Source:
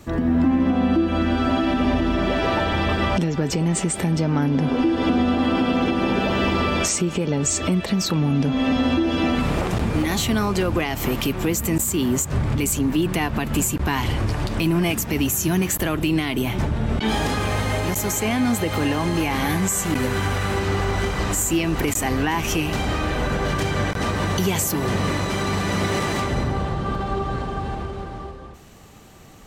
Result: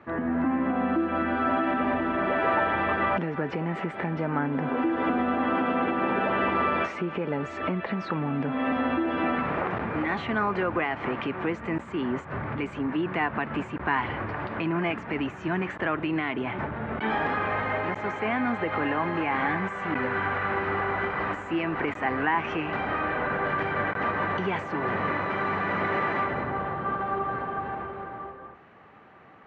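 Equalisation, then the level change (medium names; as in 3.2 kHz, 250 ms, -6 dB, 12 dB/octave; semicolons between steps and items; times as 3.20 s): high-pass 73 Hz; low-pass 1.8 kHz 24 dB/octave; tilt EQ +4 dB/octave; 0.0 dB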